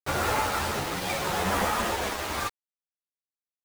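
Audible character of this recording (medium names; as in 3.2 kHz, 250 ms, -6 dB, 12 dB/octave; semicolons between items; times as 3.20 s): tremolo triangle 0.79 Hz, depth 60%; a quantiser's noise floor 6-bit, dither none; a shimmering, thickened sound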